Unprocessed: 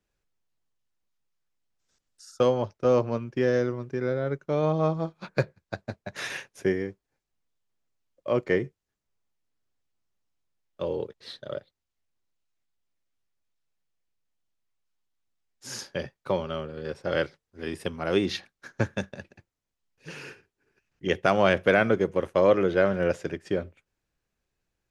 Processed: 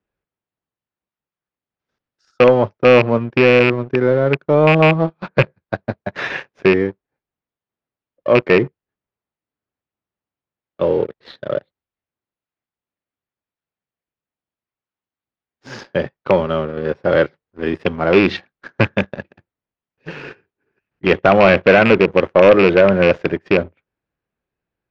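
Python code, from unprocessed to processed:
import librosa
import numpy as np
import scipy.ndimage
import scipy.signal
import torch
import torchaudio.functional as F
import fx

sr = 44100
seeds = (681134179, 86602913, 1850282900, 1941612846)

y = fx.rattle_buzz(x, sr, strikes_db=-27.0, level_db=-12.0)
y = fx.highpass(y, sr, hz=120.0, slope=6)
y = fx.high_shelf(y, sr, hz=4200.0, db=-8.5)
y = fx.leveller(y, sr, passes=2)
y = fx.air_absorb(y, sr, metres=230.0)
y = y * 10.0 ** (7.0 / 20.0)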